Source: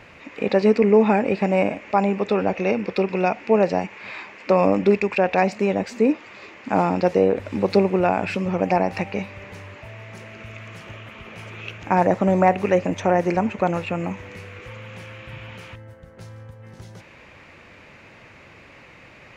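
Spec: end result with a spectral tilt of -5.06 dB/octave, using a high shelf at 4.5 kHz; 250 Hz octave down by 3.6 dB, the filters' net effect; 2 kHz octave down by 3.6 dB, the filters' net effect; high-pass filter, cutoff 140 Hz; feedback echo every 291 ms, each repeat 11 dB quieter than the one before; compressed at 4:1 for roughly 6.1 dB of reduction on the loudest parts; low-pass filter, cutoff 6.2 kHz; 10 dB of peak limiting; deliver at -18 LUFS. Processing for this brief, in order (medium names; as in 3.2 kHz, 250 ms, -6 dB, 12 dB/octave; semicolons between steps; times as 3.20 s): high-pass 140 Hz; low-pass 6.2 kHz; peaking EQ 250 Hz -4 dB; peaking EQ 2 kHz -5.5 dB; treble shelf 4.5 kHz +4 dB; compression 4:1, threshold -20 dBFS; peak limiter -18 dBFS; feedback delay 291 ms, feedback 28%, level -11 dB; trim +12 dB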